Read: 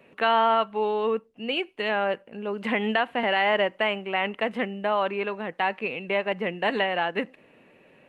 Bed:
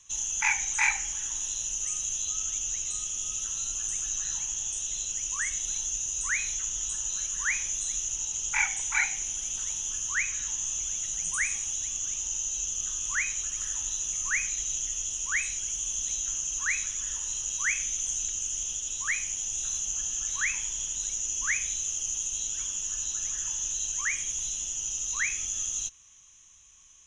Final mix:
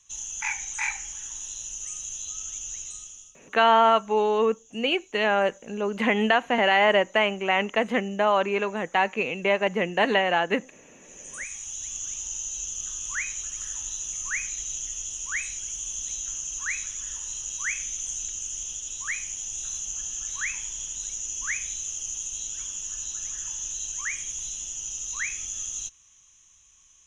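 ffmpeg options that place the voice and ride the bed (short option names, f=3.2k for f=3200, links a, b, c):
-filter_complex "[0:a]adelay=3350,volume=3dB[a];[1:a]volume=19.5dB,afade=t=out:st=2.8:d=0.55:silence=0.0891251,afade=t=in:st=11:d=0.96:silence=0.0668344[b];[a][b]amix=inputs=2:normalize=0"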